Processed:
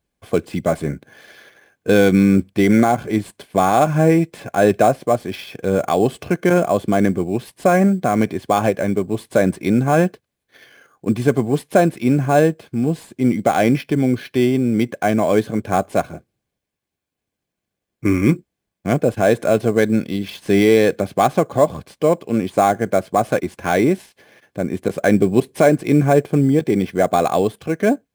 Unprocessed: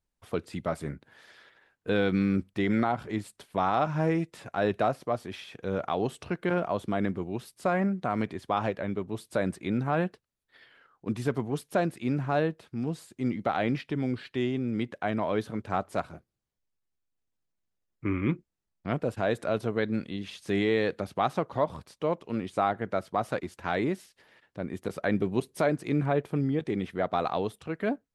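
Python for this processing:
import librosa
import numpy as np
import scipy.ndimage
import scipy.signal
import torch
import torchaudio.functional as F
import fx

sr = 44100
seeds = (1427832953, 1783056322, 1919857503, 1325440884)

p1 = fx.notch_comb(x, sr, f0_hz=940.0)
p2 = fx.sample_hold(p1, sr, seeds[0], rate_hz=7900.0, jitter_pct=0)
p3 = p1 + (p2 * 10.0 ** (-4.0 / 20.0))
p4 = fx.notch(p3, sr, hz=1300.0, q=5.2)
y = p4 * 10.0 ** (9.0 / 20.0)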